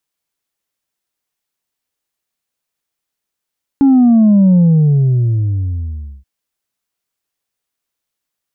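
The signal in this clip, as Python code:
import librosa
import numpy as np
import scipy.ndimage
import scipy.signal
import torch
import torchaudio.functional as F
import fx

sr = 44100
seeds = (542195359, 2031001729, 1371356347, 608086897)

y = fx.sub_drop(sr, level_db=-6.0, start_hz=280.0, length_s=2.43, drive_db=2.0, fade_s=1.7, end_hz=65.0)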